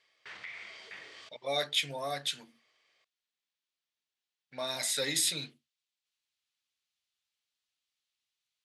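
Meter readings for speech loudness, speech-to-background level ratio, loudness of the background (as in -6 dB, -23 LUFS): -31.5 LUFS, 14.5 dB, -46.0 LUFS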